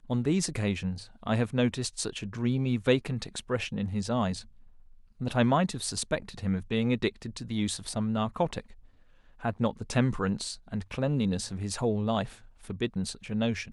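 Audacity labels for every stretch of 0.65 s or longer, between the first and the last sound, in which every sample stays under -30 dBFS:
4.390000	5.210000	silence
8.600000	9.450000	silence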